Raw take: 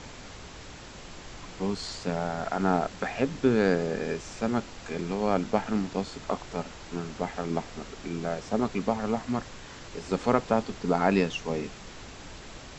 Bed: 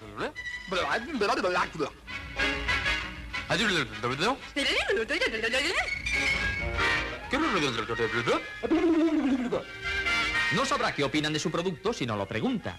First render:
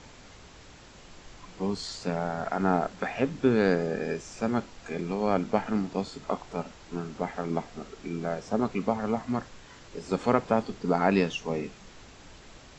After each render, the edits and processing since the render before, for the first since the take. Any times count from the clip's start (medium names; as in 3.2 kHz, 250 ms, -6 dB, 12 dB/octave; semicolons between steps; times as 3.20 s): noise print and reduce 6 dB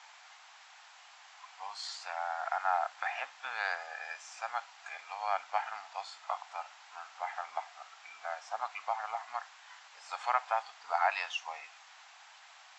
elliptic high-pass 750 Hz, stop band 50 dB; treble shelf 5.4 kHz -7 dB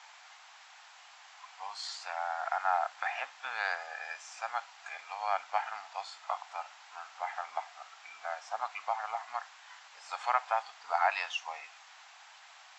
trim +1 dB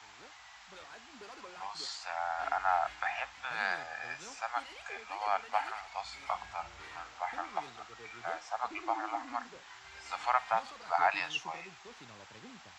add bed -24.5 dB